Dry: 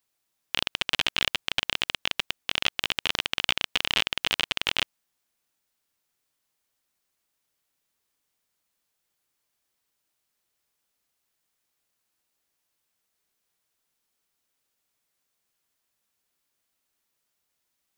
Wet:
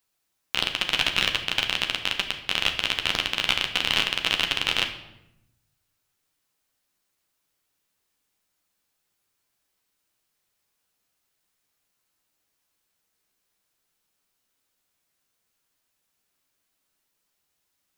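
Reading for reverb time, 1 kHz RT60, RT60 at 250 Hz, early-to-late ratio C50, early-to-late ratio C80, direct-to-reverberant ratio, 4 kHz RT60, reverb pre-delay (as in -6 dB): 0.90 s, 0.85 s, 1.2 s, 9.0 dB, 12.0 dB, 3.0 dB, 0.65 s, 10 ms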